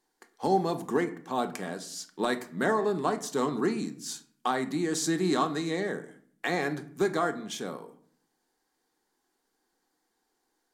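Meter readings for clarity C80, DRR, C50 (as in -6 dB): 18.0 dB, 7.0 dB, 14.5 dB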